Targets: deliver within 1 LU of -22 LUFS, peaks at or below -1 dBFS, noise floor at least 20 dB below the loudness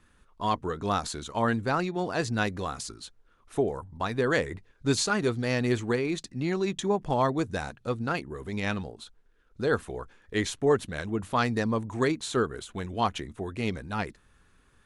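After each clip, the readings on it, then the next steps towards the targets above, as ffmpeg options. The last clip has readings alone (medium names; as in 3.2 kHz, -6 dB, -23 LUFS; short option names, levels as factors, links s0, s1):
loudness -29.5 LUFS; peak level -11.5 dBFS; loudness target -22.0 LUFS
-> -af "volume=2.37"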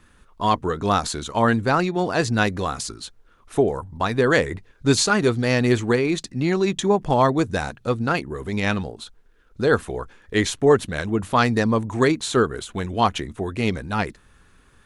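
loudness -22.0 LUFS; peak level -4.0 dBFS; noise floor -56 dBFS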